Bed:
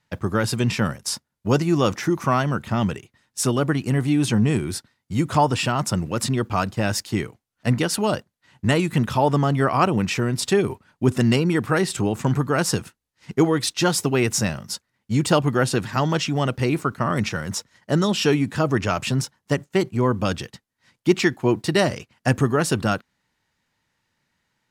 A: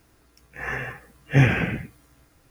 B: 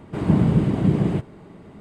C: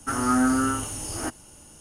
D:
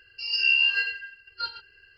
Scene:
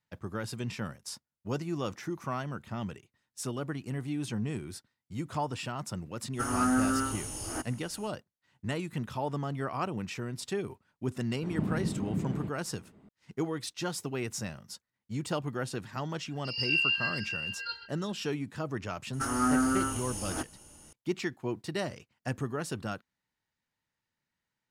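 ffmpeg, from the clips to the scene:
ffmpeg -i bed.wav -i cue0.wav -i cue1.wav -i cue2.wav -i cue3.wav -filter_complex "[3:a]asplit=2[link_01][link_02];[0:a]volume=-14.5dB[link_03];[2:a]equalizer=frequency=220:width_type=o:width=0.77:gain=4.5[link_04];[4:a]aecho=1:1:566:0.335[link_05];[link_01]atrim=end=1.8,asetpts=PTS-STARTPTS,volume=-5.5dB,afade=type=in:duration=0.05,afade=type=out:start_time=1.75:duration=0.05,adelay=6320[link_06];[link_04]atrim=end=1.8,asetpts=PTS-STARTPTS,volume=-16.5dB,afade=type=in:duration=0.004:curve=hsin,afade=type=out:start_time=1.796:duration=0.004:curve=hsin,adelay=11290[link_07];[link_05]atrim=end=1.97,asetpts=PTS-STARTPTS,volume=-6.5dB,afade=type=in:duration=0.004:curve=hsin,afade=type=out:start_time=1.966:duration=0.004:curve=hsin,adelay=16260[link_08];[link_02]atrim=end=1.8,asetpts=PTS-STARTPTS,volume=-5dB,afade=type=in:duration=0.004:curve=hsin,afade=type=out:start_time=1.796:duration=0.004:curve=hsin,adelay=19130[link_09];[link_03][link_06][link_07][link_08][link_09]amix=inputs=5:normalize=0" out.wav

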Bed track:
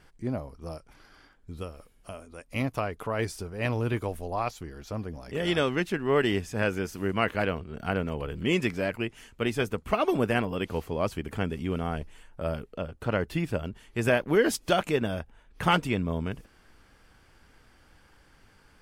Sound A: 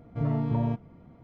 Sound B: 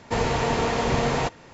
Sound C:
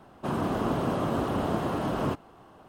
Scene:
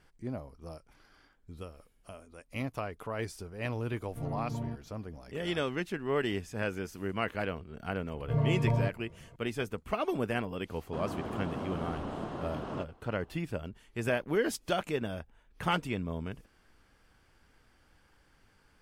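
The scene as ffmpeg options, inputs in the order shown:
ffmpeg -i bed.wav -i cue0.wav -i cue1.wav -i cue2.wav -filter_complex "[1:a]asplit=2[link_01][link_02];[0:a]volume=-6.5dB[link_03];[link_02]aecho=1:1:1.9:0.84[link_04];[3:a]lowpass=6900[link_05];[link_01]atrim=end=1.23,asetpts=PTS-STARTPTS,volume=-10dB,afade=type=in:duration=0.004:curve=hsin,afade=type=out:start_time=1.226:duration=0.004:curve=hsin,adelay=4000[link_06];[link_04]atrim=end=1.23,asetpts=PTS-STARTPTS,volume=-2.5dB,afade=type=in:duration=0.004:curve=hsin,afade=type=out:start_time=1.226:duration=0.004:curve=hsin,adelay=8130[link_07];[link_05]atrim=end=2.68,asetpts=PTS-STARTPTS,volume=-10dB,afade=type=in:duration=0.004:curve=hsin,afade=type=out:start_time=2.676:duration=0.004:curve=hsin,adelay=10690[link_08];[link_03][link_06][link_07][link_08]amix=inputs=4:normalize=0" out.wav

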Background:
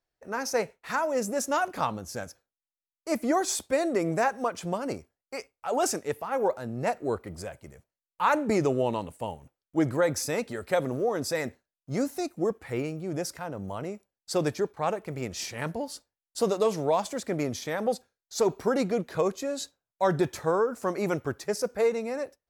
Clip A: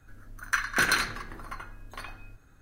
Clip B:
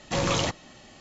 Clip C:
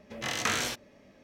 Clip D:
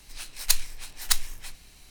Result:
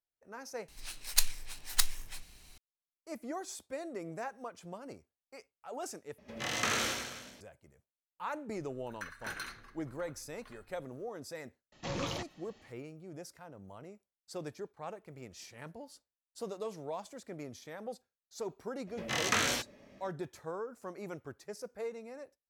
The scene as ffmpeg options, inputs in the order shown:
ffmpeg -i bed.wav -i cue0.wav -i cue1.wav -i cue2.wav -i cue3.wav -filter_complex "[3:a]asplit=2[link_01][link_02];[0:a]volume=-15dB[link_03];[link_01]aecho=1:1:80|168|264.8|371.3|488.4:0.631|0.398|0.251|0.158|0.1[link_04];[2:a]lowpass=frequency=6600:width=0.5412,lowpass=frequency=6600:width=1.3066[link_05];[link_02]acontrast=80[link_06];[link_03]asplit=3[link_07][link_08][link_09];[link_07]atrim=end=0.684[link_10];[4:a]atrim=end=1.9,asetpts=PTS-STARTPTS,volume=-4.5dB[link_11];[link_08]atrim=start=2.576:end=6.184[link_12];[link_04]atrim=end=1.23,asetpts=PTS-STARTPTS,volume=-4dB[link_13];[link_09]atrim=start=7.406[link_14];[1:a]atrim=end=2.61,asetpts=PTS-STARTPTS,volume=-17.5dB,afade=type=in:duration=0.004:curve=hsin,afade=type=out:start_time=2.606:duration=0.004:curve=hsin,adelay=8480[link_15];[link_05]atrim=end=1,asetpts=PTS-STARTPTS,volume=-12dB,afade=type=in:duration=0.004:curve=hsin,afade=type=out:start_time=0.996:duration=0.004:curve=hsin,adelay=11720[link_16];[link_06]atrim=end=1.23,asetpts=PTS-STARTPTS,volume=-7.5dB,afade=type=in:duration=0.004:curve=hsin,afade=type=out:start_time=1.226:duration=0.004:curve=hsin,adelay=18870[link_17];[link_10][link_11]acrossfade=duration=0.004:curve1=hsin:curve2=hsin[link_18];[link_18][link_12]acrossfade=duration=0.004:curve1=hsin:curve2=hsin[link_19];[link_19][link_13]acrossfade=duration=0.004:curve1=hsin:curve2=hsin[link_20];[link_20][link_14]acrossfade=duration=0.004:curve1=hsin:curve2=hsin[link_21];[link_21][link_15][link_16][link_17]amix=inputs=4:normalize=0" out.wav

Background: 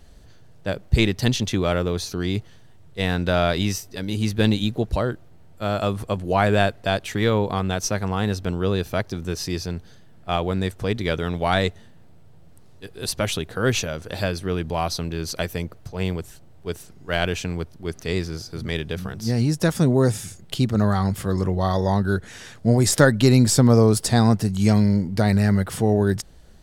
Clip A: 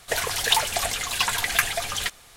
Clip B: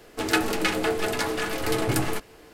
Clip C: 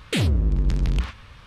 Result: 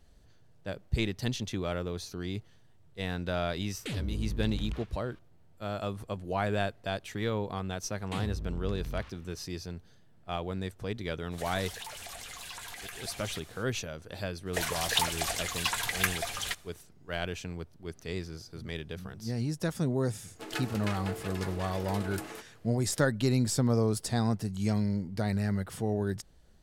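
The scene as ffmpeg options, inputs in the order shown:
ffmpeg -i bed.wav -i cue0.wav -i cue1.wav -i cue2.wav -filter_complex "[3:a]asplit=2[link_01][link_02];[1:a]asplit=2[link_03][link_04];[0:a]volume=-11.5dB[link_05];[link_03]acompressor=threshold=-39dB:ratio=4:attack=3:release=35:knee=1:detection=rms[link_06];[link_04]agate=range=-33dB:threshold=-47dB:ratio=3:release=100:detection=peak[link_07];[2:a]highpass=240[link_08];[link_01]atrim=end=1.46,asetpts=PTS-STARTPTS,volume=-14dB,afade=type=in:duration=0.004:curve=hsin,afade=type=out:start_time=1.456:duration=0.004:curve=hsin,adelay=164493S[link_09];[link_02]atrim=end=1.46,asetpts=PTS-STARTPTS,volume=-16dB,afade=type=in:duration=0.004:curve=hsin,afade=type=out:start_time=1.456:duration=0.004:curve=hsin,adelay=7990[link_10];[link_06]atrim=end=2.36,asetpts=PTS-STARTPTS,volume=-4.5dB,afade=type=in:duration=0.05,afade=type=out:start_time=2.31:duration=0.05,adelay=498330S[link_11];[link_07]atrim=end=2.36,asetpts=PTS-STARTPTS,volume=-7dB,afade=type=in:duration=0.004:curve=hsin,afade=type=out:start_time=2.356:duration=0.004:curve=hsin,adelay=14450[link_12];[link_08]atrim=end=2.53,asetpts=PTS-STARTPTS,volume=-14dB,afade=type=in:duration=0.004:curve=hsin,afade=type=out:start_time=2.526:duration=0.004:curve=hsin,adelay=20220[link_13];[link_05][link_09][link_10][link_11][link_12][link_13]amix=inputs=6:normalize=0" out.wav

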